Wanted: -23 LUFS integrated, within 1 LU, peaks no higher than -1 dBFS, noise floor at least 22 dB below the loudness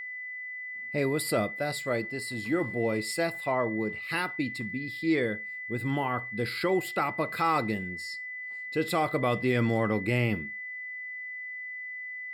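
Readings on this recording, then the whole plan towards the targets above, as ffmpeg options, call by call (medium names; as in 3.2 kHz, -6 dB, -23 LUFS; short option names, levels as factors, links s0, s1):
steady tone 2 kHz; tone level -36 dBFS; loudness -30.0 LUFS; peak level -15.0 dBFS; loudness target -23.0 LUFS
-> -af "bandreject=f=2000:w=30"
-af "volume=2.24"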